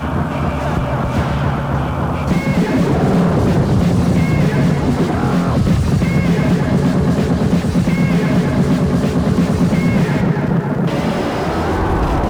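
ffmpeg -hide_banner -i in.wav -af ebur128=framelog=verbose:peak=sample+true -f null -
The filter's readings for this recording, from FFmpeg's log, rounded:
Integrated loudness:
  I:         -15.6 LUFS
  Threshold: -25.6 LUFS
Loudness range:
  LRA:         1.5 LU
  Threshold: -35.2 LUFS
  LRA low:   -16.1 LUFS
  LRA high:  -14.6 LUFS
Sample peak:
  Peak:       -3.5 dBFS
True peak:
  Peak:       -3.5 dBFS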